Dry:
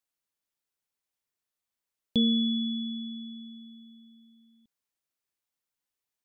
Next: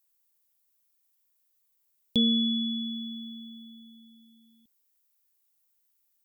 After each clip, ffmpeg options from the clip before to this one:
ffmpeg -i in.wav -af "aemphasis=mode=production:type=50fm" out.wav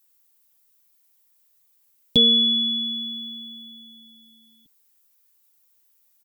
ffmpeg -i in.wav -af "aecho=1:1:6.8:0.68,volume=7.5dB" out.wav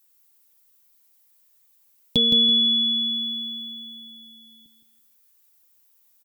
ffmpeg -i in.wav -af "acompressor=threshold=-27dB:ratio=1.5,aecho=1:1:166|332|498|664:0.447|0.138|0.0429|0.0133,volume=1.5dB" out.wav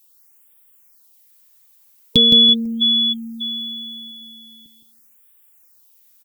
ffmpeg -i in.wav -af "afftfilt=real='re*(1-between(b*sr/1024,360*pow(5400/360,0.5+0.5*sin(2*PI*0.42*pts/sr))/1.41,360*pow(5400/360,0.5+0.5*sin(2*PI*0.42*pts/sr))*1.41))':imag='im*(1-between(b*sr/1024,360*pow(5400/360,0.5+0.5*sin(2*PI*0.42*pts/sr))/1.41,360*pow(5400/360,0.5+0.5*sin(2*PI*0.42*pts/sr))*1.41))':win_size=1024:overlap=0.75,volume=7dB" out.wav

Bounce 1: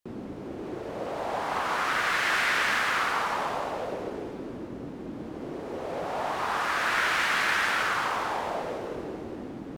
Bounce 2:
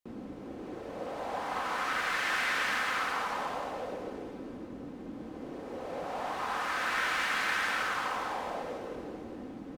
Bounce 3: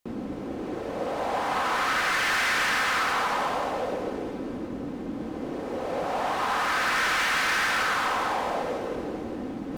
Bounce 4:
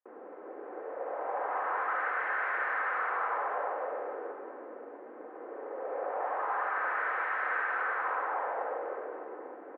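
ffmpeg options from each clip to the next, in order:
ffmpeg -i in.wav -af "aecho=1:1:3.9:0.32,volume=-5.5dB" out.wav
ffmpeg -i in.wav -af "areverse,acompressor=mode=upward:threshold=-39dB:ratio=2.5,areverse,asoftclip=type=hard:threshold=-30dB,volume=8.5dB" out.wav
ffmpeg -i in.wav -filter_complex "[0:a]asuperpass=centerf=850:order=8:qfactor=0.59,asplit=2[link_01][link_02];[link_02]aecho=0:1:70|182|361.2|647.9|1107:0.631|0.398|0.251|0.158|0.1[link_03];[link_01][link_03]amix=inputs=2:normalize=0,volume=-7.5dB" out.wav

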